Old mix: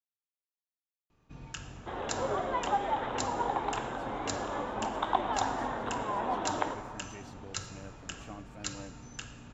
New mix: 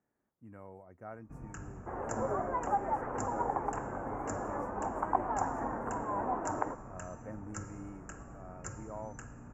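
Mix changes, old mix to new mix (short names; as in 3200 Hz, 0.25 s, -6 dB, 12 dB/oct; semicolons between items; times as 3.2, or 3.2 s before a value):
speech: entry -2.65 s; second sound: send -10.0 dB; master: add Butterworth band-stop 3700 Hz, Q 0.55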